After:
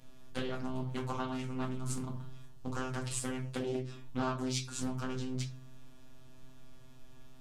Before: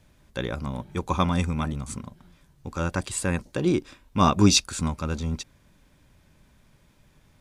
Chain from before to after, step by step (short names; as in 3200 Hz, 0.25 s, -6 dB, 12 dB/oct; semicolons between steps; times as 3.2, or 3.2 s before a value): compressor 6:1, threshold -34 dBFS, peak gain reduction 20 dB; robotiser 129 Hz; shoebox room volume 240 m³, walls furnished, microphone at 1.8 m; Doppler distortion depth 0.56 ms